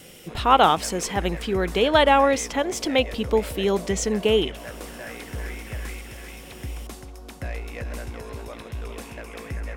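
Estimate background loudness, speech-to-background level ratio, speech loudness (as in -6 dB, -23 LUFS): -36.0 LUFS, 14.5 dB, -21.5 LUFS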